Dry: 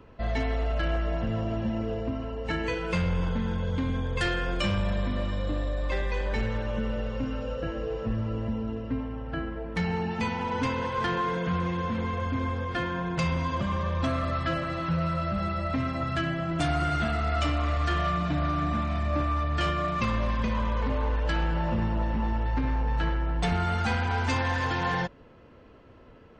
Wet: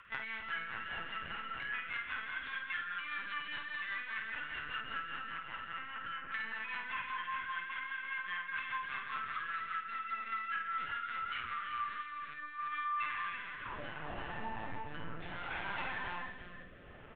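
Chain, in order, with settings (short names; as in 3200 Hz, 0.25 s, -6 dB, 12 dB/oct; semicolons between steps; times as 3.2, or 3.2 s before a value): HPF 86 Hz 12 dB/oct; high-pass sweep 1500 Hz -> 110 Hz, 20.99–21.63; limiter -25 dBFS, peak gain reduction 11 dB; LPF 2400 Hz 12 dB/oct; tilt +4.5 dB/oct; plain phase-vocoder stretch 0.65×; notches 50/100/150/200/250/300/350 Hz; LPC vocoder at 8 kHz pitch kept; compressor 6:1, threshold -42 dBFS, peak gain reduction 12.5 dB; feedback echo 0.34 s, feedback 26%, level -5.5 dB; rotary speaker horn 5 Hz, later 0.7 Hz, at 11.52; doubler 50 ms -7.5 dB; gain +6 dB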